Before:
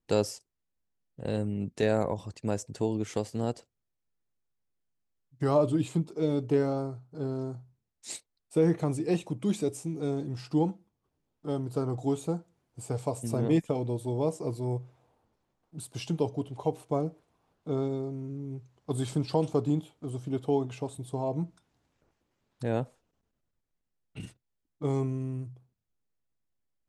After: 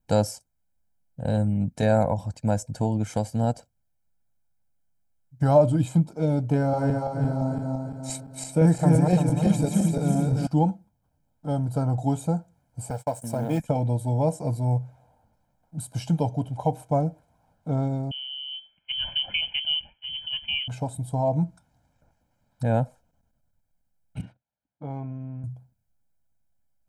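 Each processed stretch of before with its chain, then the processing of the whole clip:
0:06.56–0:10.47: feedback delay that plays each chunk backwards 171 ms, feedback 66%, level −1.5 dB + notch filter 3,500 Hz, Q 20
0:12.90–0:13.60: mu-law and A-law mismatch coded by A + high-pass filter 300 Hz 6 dB per octave + noise gate −49 dBFS, range −29 dB
0:18.11–0:20.68: voice inversion scrambler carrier 3,200 Hz + one half of a high-frequency compander decoder only
0:24.21–0:25.44: high-pass filter 320 Hz 6 dB per octave + downward compressor 1.5 to 1, threshold −42 dBFS + high-frequency loss of the air 330 metres
whole clip: parametric band 3,300 Hz −8.5 dB 2.2 octaves; comb filter 1.3 ms, depth 84%; level +5.5 dB

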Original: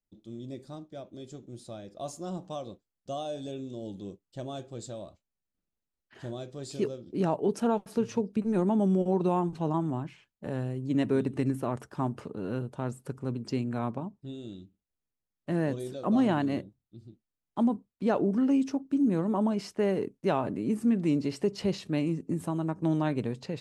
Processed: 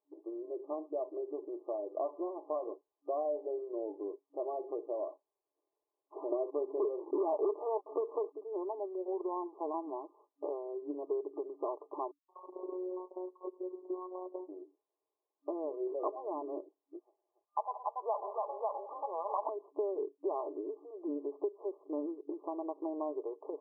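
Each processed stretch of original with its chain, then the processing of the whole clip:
0:06.32–0:08.33: Butterworth high-pass 230 Hz + leveller curve on the samples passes 3
0:12.11–0:14.49: three-band delay without the direct sound highs, mids, lows 180/380 ms, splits 780/4,700 Hz + phases set to zero 183 Hz
0:17.00–0:19.49: inverse Chebyshev high-pass filter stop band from 270 Hz, stop band 50 dB + multi-tap delay 67/112/165/284/547 ms −18/−17.5/−17.5/−6.5/−4.5 dB
whole clip: comb filter 4.8 ms, depth 50%; downward compressor 6 to 1, threshold −43 dBFS; brick-wall band-pass 280–1,200 Hz; level +11 dB

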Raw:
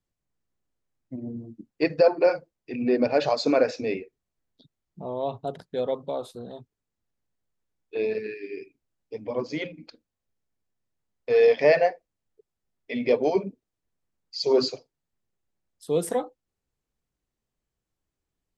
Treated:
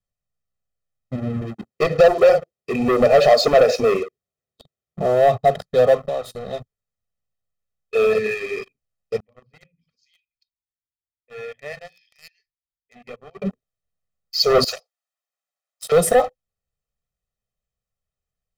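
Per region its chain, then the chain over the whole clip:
0:01.41–0:05.28: high-pass filter 86 Hz + parametric band 360 Hz +11 dB + downward compressor 1.5 to 1, threshold −28 dBFS
0:05.99–0:06.53: mains-hum notches 60/120/180/240/300/360 Hz + downward compressor 2.5 to 1, threshold −39 dBFS
0:09.20–0:13.42: guitar amp tone stack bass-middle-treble 6-0-2 + three-band delay without the direct sound mids, lows, highs 80/530 ms, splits 170/2,600 Hz
0:14.64–0:15.92: high-pass filter 640 Hz 24 dB per octave + compressor whose output falls as the input rises −34 dBFS, ratio −0.5 + saturating transformer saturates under 3,600 Hz
whole clip: dynamic equaliser 680 Hz, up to +5 dB, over −37 dBFS, Q 3.5; leveller curve on the samples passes 3; comb filter 1.6 ms, depth 97%; level −1 dB

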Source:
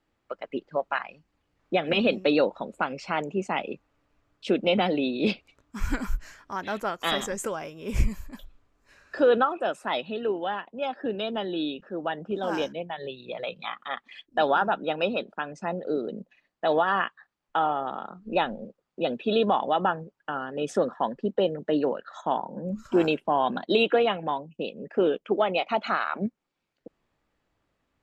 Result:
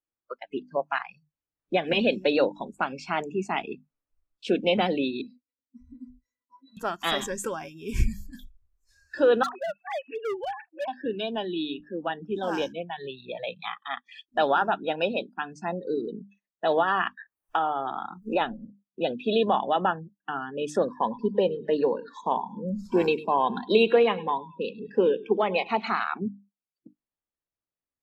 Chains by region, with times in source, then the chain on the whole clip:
0:05.21–0:06.77: downward compressor 10 to 1, threshold −28 dBFS + phaser with its sweep stopped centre 320 Hz, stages 4 + resonances in every octave B, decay 0.1 s
0:09.43–0:10.88: three sine waves on the formant tracks + hard clipping −27 dBFS
0:17.06–0:18.41: parametric band 190 Hz −5 dB 0.71 octaves + multiband upward and downward compressor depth 70%
0:20.91–0:26.00: EQ curve with evenly spaced ripples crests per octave 0.89, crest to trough 7 dB + repeating echo 103 ms, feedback 44%, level −17.5 dB
whole clip: mains-hum notches 50/100/150/200/250/300 Hz; noise reduction from a noise print of the clip's start 24 dB

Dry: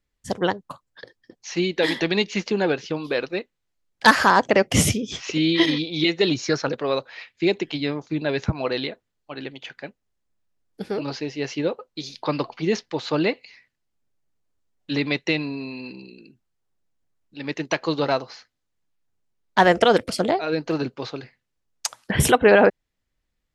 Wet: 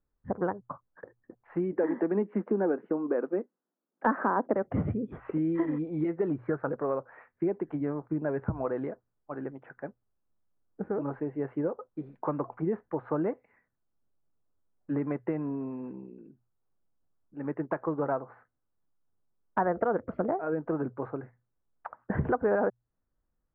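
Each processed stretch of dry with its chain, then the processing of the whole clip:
0:01.72–0:04.54: Butterworth high-pass 210 Hz + low-shelf EQ 410 Hz +11 dB
whole clip: Butterworth low-pass 1,500 Hz 36 dB per octave; mains-hum notches 60/120 Hz; downward compressor 2.5 to 1, threshold −26 dBFS; level −2 dB

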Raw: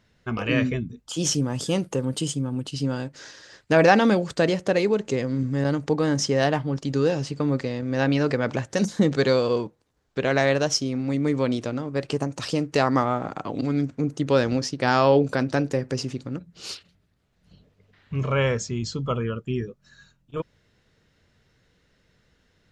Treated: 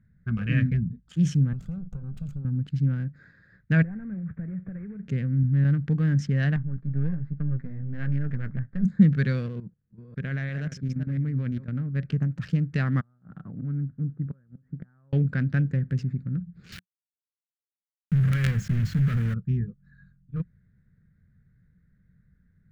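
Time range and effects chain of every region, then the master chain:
0:01.53–0:02.45: lower of the sound and its delayed copy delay 1.5 ms + Butterworth band-reject 1,900 Hz, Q 1.9 + downward compressor 10 to 1, threshold −31 dBFS
0:03.82–0:05.03: variable-slope delta modulation 16 kbit/s + downward compressor 4 to 1, threshold −34 dBFS
0:06.56–0:08.85: gain on one half-wave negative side −12 dB + low-pass filter 2,600 Hz + flanger 1.2 Hz, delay 6.2 ms, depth 8.7 ms, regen −30%
0:09.46–0:11.68: delay that plays each chunk backwards 343 ms, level −10 dB + output level in coarse steps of 13 dB
0:13.00–0:15.13: gate with flip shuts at −13 dBFS, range −30 dB + transistor ladder low-pass 1,800 Hz, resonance 25%
0:16.72–0:19.34: high-shelf EQ 8,100 Hz +2.5 dB + log-companded quantiser 2 bits + level that may fall only so fast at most 85 dB per second
whole clip: adaptive Wiener filter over 15 samples; drawn EQ curve 110 Hz 0 dB, 180 Hz +4 dB, 310 Hz −17 dB, 950 Hz −27 dB, 1,600 Hz −6 dB, 5,200 Hz −23 dB; level +4.5 dB

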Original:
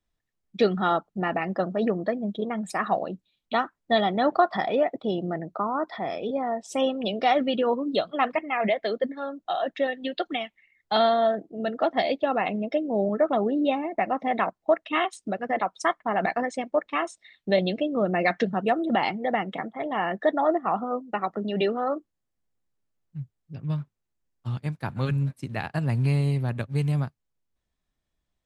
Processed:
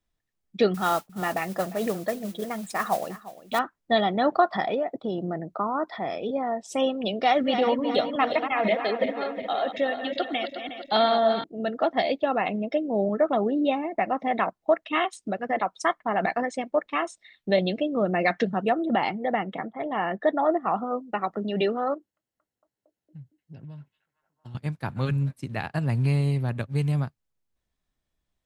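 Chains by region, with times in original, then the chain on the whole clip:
0:00.74–0:03.59: single-tap delay 352 ms −17.5 dB + dynamic equaliser 270 Hz, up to −5 dB, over −39 dBFS, Q 1 + noise that follows the level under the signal 16 dB
0:04.74–0:05.50: downward compressor 2.5 to 1, threshold −24 dBFS + parametric band 2,500 Hz −6 dB 1.1 octaves
0:07.25–0:11.44: feedback delay that plays each chunk backwards 181 ms, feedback 69%, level −8 dB + high-shelf EQ 6,900 Hz +7 dB
0:18.69–0:20.61: high-shelf EQ 3,900 Hz −6.5 dB + one half of a high-frequency compander decoder only
0:21.94–0:24.55: downward compressor, threshold −37 dBFS + notch comb filter 1,200 Hz + echo through a band-pass that steps 229 ms, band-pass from 2,700 Hz, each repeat −0.7 octaves, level −8.5 dB
whole clip: no processing

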